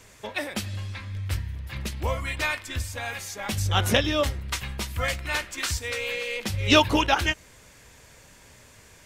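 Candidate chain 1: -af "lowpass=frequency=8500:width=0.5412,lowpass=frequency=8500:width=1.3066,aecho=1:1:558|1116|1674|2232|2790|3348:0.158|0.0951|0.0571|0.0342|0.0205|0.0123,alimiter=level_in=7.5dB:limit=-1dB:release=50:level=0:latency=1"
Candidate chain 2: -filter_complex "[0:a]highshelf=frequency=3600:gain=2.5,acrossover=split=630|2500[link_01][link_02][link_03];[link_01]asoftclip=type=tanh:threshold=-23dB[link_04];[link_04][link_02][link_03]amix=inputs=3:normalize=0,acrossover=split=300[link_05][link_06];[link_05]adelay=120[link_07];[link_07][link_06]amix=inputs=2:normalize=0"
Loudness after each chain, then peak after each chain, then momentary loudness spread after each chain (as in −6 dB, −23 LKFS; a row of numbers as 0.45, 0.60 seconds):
−20.0, −27.0 LKFS; −1.0, −4.5 dBFS; 16, 12 LU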